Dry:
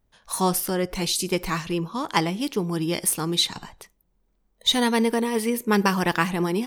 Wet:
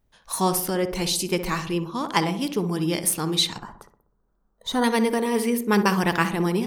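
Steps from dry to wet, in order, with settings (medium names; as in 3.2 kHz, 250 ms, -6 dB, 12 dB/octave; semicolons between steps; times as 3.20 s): 3.58–4.84 s: resonant high shelf 1.8 kHz -8.5 dB, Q 3; filtered feedback delay 63 ms, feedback 57%, low-pass 1.2 kHz, level -8.5 dB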